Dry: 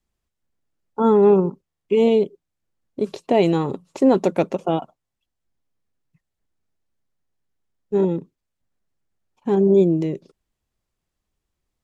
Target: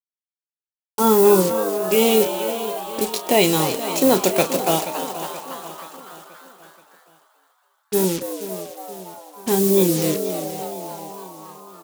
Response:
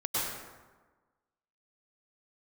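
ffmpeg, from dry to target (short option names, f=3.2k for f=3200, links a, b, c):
-filter_complex "[0:a]acrusher=bits=5:mix=0:aa=0.5,asplit=2[a][b];[b]adelay=32,volume=-11.5dB[c];[a][c]amix=inputs=2:normalize=0,asplit=2[d][e];[e]aecho=0:1:479|958|1437|1916|2395:0.224|0.112|0.056|0.028|0.014[f];[d][f]amix=inputs=2:normalize=0,crystalizer=i=8.5:c=0,asplit=2[g][h];[h]asplit=8[i][j][k][l][m][n][o][p];[i]adelay=280,afreqshift=120,volume=-10.5dB[q];[j]adelay=560,afreqshift=240,volume=-14.4dB[r];[k]adelay=840,afreqshift=360,volume=-18.3dB[s];[l]adelay=1120,afreqshift=480,volume=-22.1dB[t];[m]adelay=1400,afreqshift=600,volume=-26dB[u];[n]adelay=1680,afreqshift=720,volume=-29.9dB[v];[o]adelay=1960,afreqshift=840,volume=-33.8dB[w];[p]adelay=2240,afreqshift=960,volume=-37.6dB[x];[q][r][s][t][u][v][w][x]amix=inputs=8:normalize=0[y];[g][y]amix=inputs=2:normalize=0,volume=-2dB"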